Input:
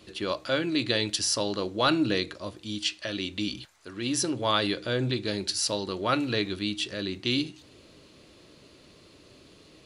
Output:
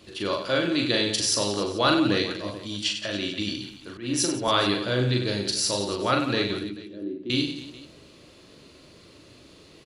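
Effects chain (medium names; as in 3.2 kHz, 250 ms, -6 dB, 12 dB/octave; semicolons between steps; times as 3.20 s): 6.60–7.30 s: band-pass filter 320 Hz, Q 2.9; reverse bouncing-ball echo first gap 40 ms, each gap 1.4×, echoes 5; 3.97–4.48 s: three bands expanded up and down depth 100%; trim +1 dB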